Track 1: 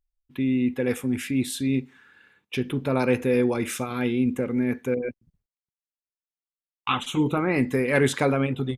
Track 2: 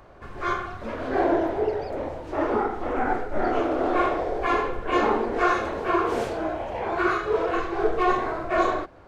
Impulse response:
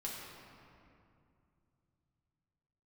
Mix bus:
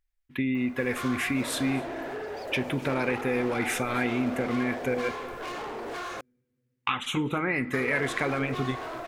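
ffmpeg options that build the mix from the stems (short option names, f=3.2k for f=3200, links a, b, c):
-filter_complex "[0:a]equalizer=f=1.9k:w=1.5:g=10.5,acompressor=threshold=-25dB:ratio=6,volume=0dB,asplit=3[a][b][c];[b]volume=-19dB[d];[c]volume=-22.5dB[e];[1:a]aemphasis=mode=production:type=bsi,acompressor=threshold=-27dB:ratio=6,volume=32.5dB,asoftclip=hard,volume=-32.5dB,adelay=550,volume=-1dB,asplit=3[f][g][h];[f]atrim=end=6.21,asetpts=PTS-STARTPTS,afade=t=out:st=6.206:d=0.004:c=hsin[i];[g]atrim=start=6.21:end=7.73,asetpts=PTS-STARTPTS,volume=0[j];[h]atrim=start=7.73,asetpts=PTS-STARTPTS,afade=t=in:d=0.004:c=hsin[k];[i][j][k]concat=n=3:v=0:a=1[l];[2:a]atrim=start_sample=2205[m];[d][m]afir=irnorm=-1:irlink=0[n];[e]aecho=0:1:256:1[o];[a][l][n][o]amix=inputs=4:normalize=0"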